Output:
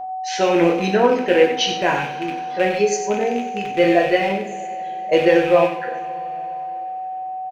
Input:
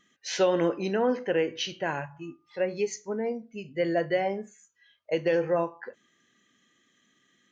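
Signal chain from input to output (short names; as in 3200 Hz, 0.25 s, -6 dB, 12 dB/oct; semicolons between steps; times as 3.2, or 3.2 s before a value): rattling part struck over -42 dBFS, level -28 dBFS; gate with hold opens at -54 dBFS; AGC gain up to 7.5 dB; whine 750 Hz -31 dBFS; reverb removal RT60 0.81 s; echo 92 ms -10 dB; two-slope reverb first 0.45 s, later 4.1 s, from -20 dB, DRR 1 dB; gain +1.5 dB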